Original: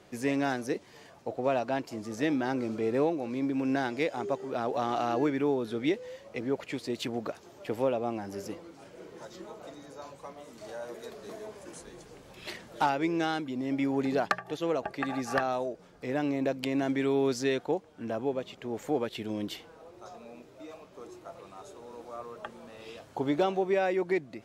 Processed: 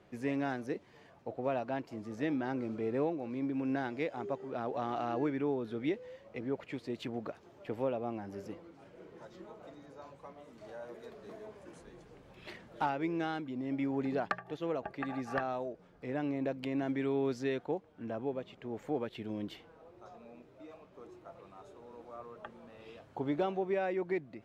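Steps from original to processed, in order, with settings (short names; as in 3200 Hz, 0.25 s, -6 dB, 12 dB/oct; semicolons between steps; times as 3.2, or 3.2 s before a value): tone controls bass +3 dB, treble -11 dB; gain -6 dB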